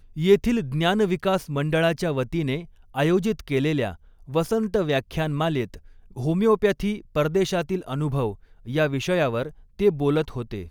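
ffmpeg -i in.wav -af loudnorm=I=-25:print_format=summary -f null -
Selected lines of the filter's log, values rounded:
Input Integrated:    -24.2 LUFS
Input True Peak:      -5.1 dBTP
Input LRA:             1.9 LU
Input Threshold:     -34.5 LUFS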